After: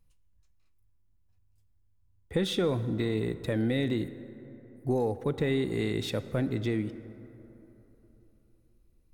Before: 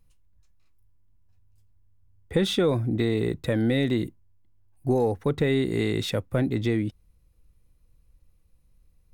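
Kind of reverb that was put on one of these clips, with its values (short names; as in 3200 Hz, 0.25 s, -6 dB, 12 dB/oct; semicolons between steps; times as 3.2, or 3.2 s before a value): plate-style reverb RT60 3.6 s, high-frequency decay 0.4×, DRR 12.5 dB; gain -5 dB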